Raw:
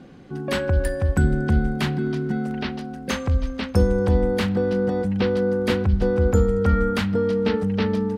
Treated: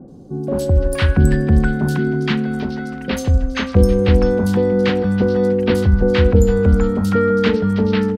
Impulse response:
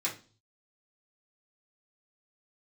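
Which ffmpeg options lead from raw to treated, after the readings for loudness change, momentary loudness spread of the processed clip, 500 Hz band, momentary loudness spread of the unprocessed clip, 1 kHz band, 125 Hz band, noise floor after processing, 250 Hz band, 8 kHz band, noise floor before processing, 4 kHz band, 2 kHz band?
+5.5 dB, 8 LU, +5.5 dB, 7 LU, +4.0 dB, +6.0 dB, -29 dBFS, +6.0 dB, +4.5 dB, -35 dBFS, +4.5 dB, +5.0 dB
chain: -filter_complex "[0:a]acrossover=split=830|5200[s0][s1][s2];[s2]adelay=80[s3];[s1]adelay=470[s4];[s0][s4][s3]amix=inputs=3:normalize=0,volume=2"

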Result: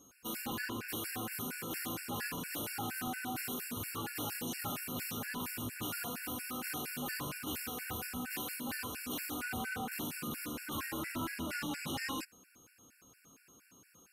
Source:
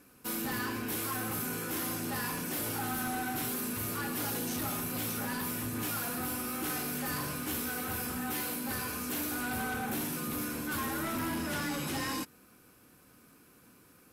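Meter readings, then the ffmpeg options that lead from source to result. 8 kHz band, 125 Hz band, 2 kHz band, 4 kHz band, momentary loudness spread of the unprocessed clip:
-5.0 dB, -5.5 dB, -3.5 dB, -2.5 dB, 1 LU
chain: -af "aeval=exprs='val(0)+0.001*sin(2*PI*6500*n/s)':c=same,equalizer=f=2800:t=o:w=1.2:g=5,afftfilt=real='re*gt(sin(2*PI*4.3*pts/sr)*(1-2*mod(floor(b*sr/1024/1400),2)),0)':imag='im*gt(sin(2*PI*4.3*pts/sr)*(1-2*mod(floor(b*sr/1024/1400),2)),0)':win_size=1024:overlap=0.75,volume=0.75"

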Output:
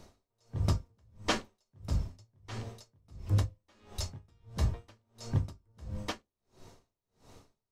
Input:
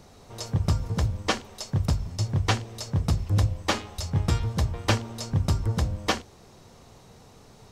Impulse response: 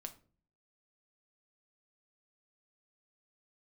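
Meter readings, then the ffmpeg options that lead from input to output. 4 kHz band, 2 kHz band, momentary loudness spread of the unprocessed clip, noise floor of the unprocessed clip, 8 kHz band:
-10.0 dB, -10.5 dB, 5 LU, -52 dBFS, -10.5 dB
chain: -filter_complex "[1:a]atrim=start_sample=2205,asetrate=79380,aresample=44100[s0];[0:a][s0]afir=irnorm=-1:irlink=0,aeval=exprs='val(0)*pow(10,-40*(0.5-0.5*cos(2*PI*1.5*n/s))/20)':c=same,volume=2.11"

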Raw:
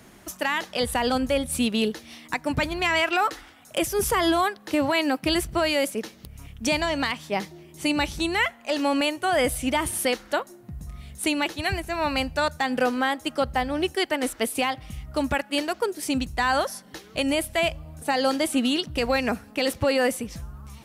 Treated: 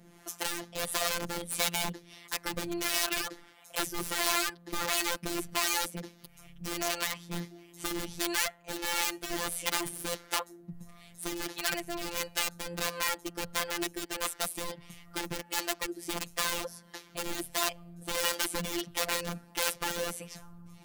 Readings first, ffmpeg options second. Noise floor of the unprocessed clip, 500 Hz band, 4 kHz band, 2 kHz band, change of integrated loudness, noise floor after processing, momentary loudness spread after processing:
-50 dBFS, -13.0 dB, -5.0 dB, -8.0 dB, -7.5 dB, -57 dBFS, 12 LU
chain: -filter_complex "[0:a]aeval=exprs='(mod(8.91*val(0)+1,2)-1)/8.91':c=same,acrossover=split=460[s0][s1];[s0]aeval=exprs='val(0)*(1-0.7/2+0.7/2*cos(2*PI*1.5*n/s))':c=same[s2];[s1]aeval=exprs='val(0)*(1-0.7/2-0.7/2*cos(2*PI*1.5*n/s))':c=same[s3];[s2][s3]amix=inputs=2:normalize=0,afftfilt=real='hypot(re,im)*cos(PI*b)':imag='0':win_size=1024:overlap=0.75"

